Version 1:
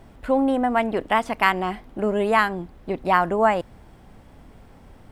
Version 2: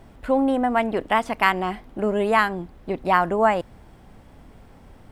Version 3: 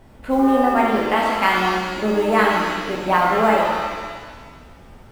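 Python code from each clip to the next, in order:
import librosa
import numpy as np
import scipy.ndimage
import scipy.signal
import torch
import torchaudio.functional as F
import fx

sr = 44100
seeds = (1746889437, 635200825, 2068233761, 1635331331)

y1 = x
y2 = fx.mod_noise(y1, sr, seeds[0], snr_db=32)
y2 = fx.rev_shimmer(y2, sr, seeds[1], rt60_s=1.6, semitones=7, shimmer_db=-8, drr_db=-3.0)
y2 = y2 * librosa.db_to_amplitude(-1.5)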